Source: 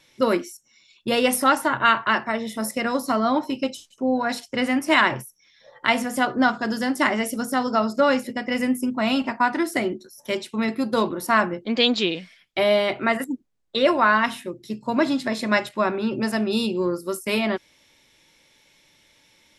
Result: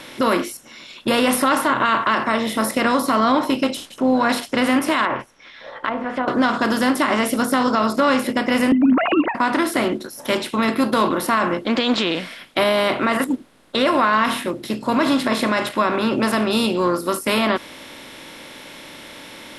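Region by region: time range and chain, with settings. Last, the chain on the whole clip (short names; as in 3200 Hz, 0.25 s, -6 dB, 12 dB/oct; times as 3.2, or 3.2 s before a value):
5.05–6.28 LPF 2600 Hz + treble ducked by the level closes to 530 Hz, closed at -18 dBFS + bell 190 Hz -14.5 dB 2.5 oct
8.72–9.35 sine-wave speech + low shelf 340 Hz +12 dB
whole clip: per-bin compression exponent 0.6; dynamic EQ 1100 Hz, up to +6 dB, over -35 dBFS, Q 4.9; limiter -8 dBFS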